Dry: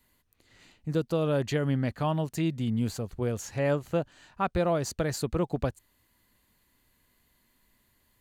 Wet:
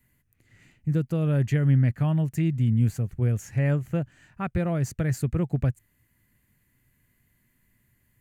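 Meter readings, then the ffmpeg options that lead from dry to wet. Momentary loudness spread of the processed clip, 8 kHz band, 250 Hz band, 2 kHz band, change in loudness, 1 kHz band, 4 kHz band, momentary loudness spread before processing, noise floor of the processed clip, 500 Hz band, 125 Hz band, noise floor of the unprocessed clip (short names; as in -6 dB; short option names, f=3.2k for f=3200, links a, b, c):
9 LU, -3.0 dB, +3.5 dB, 0.0 dB, +4.0 dB, -6.0 dB, n/a, 5 LU, -69 dBFS, -4.5 dB, +9.0 dB, -70 dBFS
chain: -af "equalizer=f=125:t=o:w=1:g=11,equalizer=f=500:t=o:w=1:g=-4,equalizer=f=1k:t=o:w=1:g=-8,equalizer=f=2k:t=o:w=1:g=6,equalizer=f=4k:t=o:w=1:g=-12"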